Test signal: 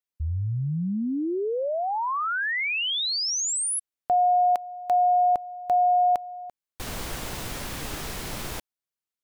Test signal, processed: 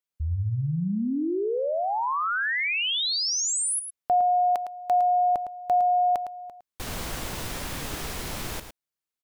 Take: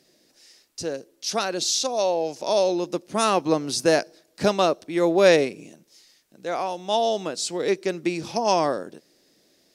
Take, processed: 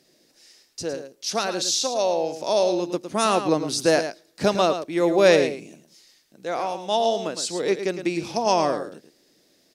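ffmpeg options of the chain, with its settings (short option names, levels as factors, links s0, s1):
-af "aecho=1:1:109:0.335"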